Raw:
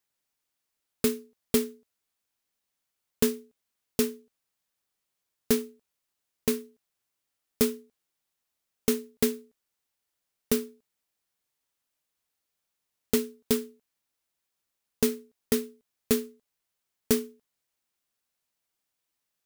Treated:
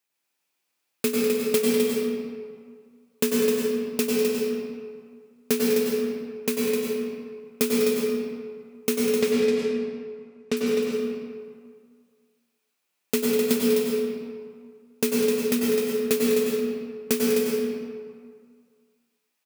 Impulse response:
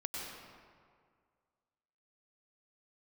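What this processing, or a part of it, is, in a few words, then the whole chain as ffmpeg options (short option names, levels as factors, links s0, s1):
stadium PA: -filter_complex "[0:a]asettb=1/sr,asplit=3[s0][s1][s2];[s0]atrim=end=9.144[s3];[s1]atrim=start=9.14:end=10.57,asetpts=PTS-STARTPTS,afade=t=in:d=0.004:c=qsin,afade=t=out:st=1.426:d=0.004:c=qsin,lowpass=5400[s4];[s2]atrim=start=10.566[s5];[s3][s4]acrossfade=d=0.004:c1=hsin:c2=qsin[s6];[s6][s5]acrossfade=d=0.004:c1=qsin:c2=hsin,highpass=180,equalizer=f=2500:t=o:w=0.23:g=7,aecho=1:1:198.3|256.6:0.316|0.501[s7];[1:a]atrim=start_sample=2205[s8];[s7][s8]afir=irnorm=-1:irlink=0,volume=1.58"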